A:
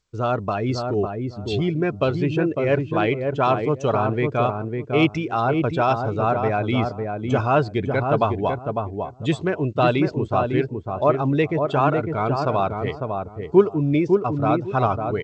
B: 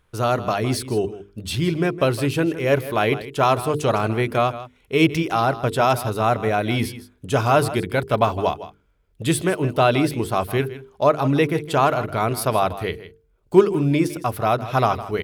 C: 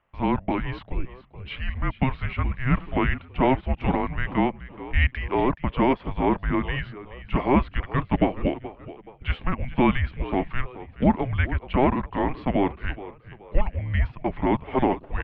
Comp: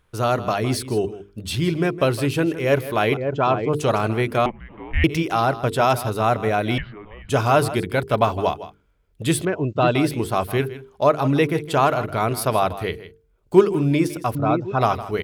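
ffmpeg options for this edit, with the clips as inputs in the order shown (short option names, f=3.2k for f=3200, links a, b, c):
-filter_complex "[0:a]asplit=3[a][b][c];[2:a]asplit=2[d][e];[1:a]asplit=6[f][g][h][i][j][k];[f]atrim=end=3.172[l];[a]atrim=start=3.168:end=3.732[m];[g]atrim=start=3.728:end=4.462[n];[d]atrim=start=4.458:end=5.042[o];[h]atrim=start=5.038:end=6.782[p];[e]atrim=start=6.778:end=7.292[q];[i]atrim=start=7.288:end=9.452[r];[b]atrim=start=9.448:end=9.952[s];[j]atrim=start=9.948:end=14.352[t];[c]atrim=start=14.348:end=14.812[u];[k]atrim=start=14.808[v];[l][m]acrossfade=d=0.004:c1=hsin:c2=hsin[w];[w][n]acrossfade=d=0.004:c1=hsin:c2=hsin[x];[x][o]acrossfade=d=0.004:c1=hsin:c2=hsin[y];[y][p]acrossfade=d=0.004:c1=hsin:c2=hsin[z];[z][q]acrossfade=d=0.004:c1=hsin:c2=hsin[aa];[aa][r]acrossfade=d=0.004:c1=hsin:c2=hsin[ab];[ab][s]acrossfade=d=0.004:c1=hsin:c2=hsin[ac];[ac][t]acrossfade=d=0.004:c1=hsin:c2=hsin[ad];[ad][u]acrossfade=d=0.004:c1=hsin:c2=hsin[ae];[ae][v]acrossfade=d=0.004:c1=hsin:c2=hsin"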